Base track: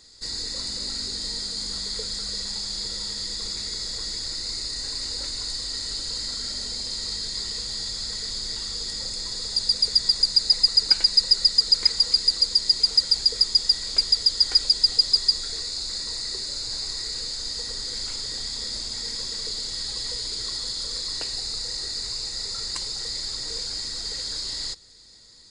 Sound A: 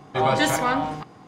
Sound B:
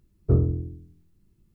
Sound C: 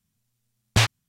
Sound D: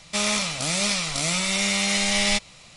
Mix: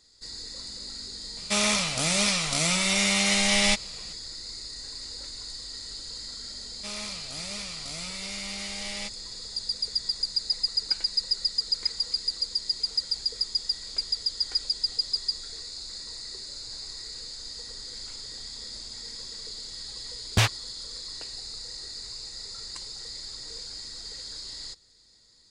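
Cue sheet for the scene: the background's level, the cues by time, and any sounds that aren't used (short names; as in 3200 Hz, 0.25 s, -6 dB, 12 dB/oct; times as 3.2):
base track -8.5 dB
1.37 add D -0.5 dB
6.7 add D -14.5 dB
19.61 add C -2.5 dB
not used: A, B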